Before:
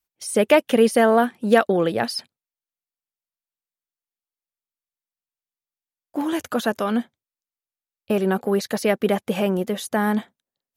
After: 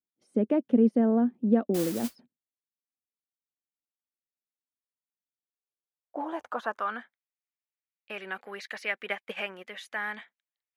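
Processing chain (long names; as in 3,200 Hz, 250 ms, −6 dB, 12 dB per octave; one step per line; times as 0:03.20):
0:09.06–0:09.68: transient designer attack +8 dB, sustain −8 dB
band-pass filter sweep 250 Hz → 2,100 Hz, 0:05.19–0:07.29
0:01.74–0:02.16: noise that follows the level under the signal 11 dB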